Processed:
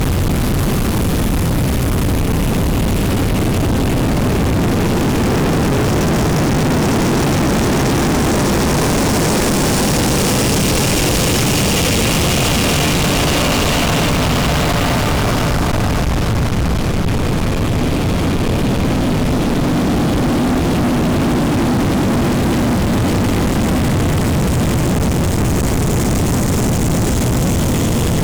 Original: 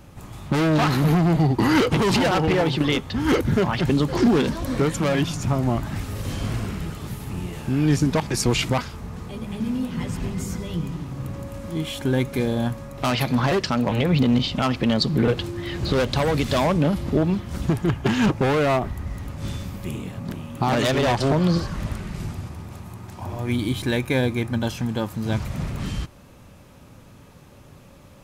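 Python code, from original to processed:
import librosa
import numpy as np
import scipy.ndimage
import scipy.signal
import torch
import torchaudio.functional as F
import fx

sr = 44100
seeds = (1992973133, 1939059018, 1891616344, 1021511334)

p1 = fx.low_shelf(x, sr, hz=110.0, db=10.5)
p2 = fx.whisperise(p1, sr, seeds[0])
p3 = 10.0 ** (-15.5 / 20.0) * (np.abs((p2 / 10.0 ** (-15.5 / 20.0) + 3.0) % 4.0 - 2.0) - 1.0)
p4 = p2 + (p3 * librosa.db_to_amplitude(-6.5))
p5 = fx.paulstretch(p4, sr, seeds[1], factor=7.8, window_s=1.0, from_s=7.01)
y = fx.fuzz(p5, sr, gain_db=36.0, gate_db=-38.0)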